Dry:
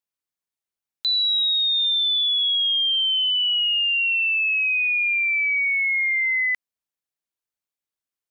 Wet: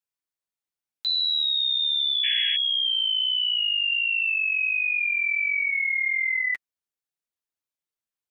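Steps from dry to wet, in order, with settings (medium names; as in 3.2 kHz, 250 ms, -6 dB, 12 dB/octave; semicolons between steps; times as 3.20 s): painted sound noise, 2.23–2.56 s, 1.6–3.3 kHz -27 dBFS; flange 1.4 Hz, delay 5.5 ms, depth 6.8 ms, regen -9%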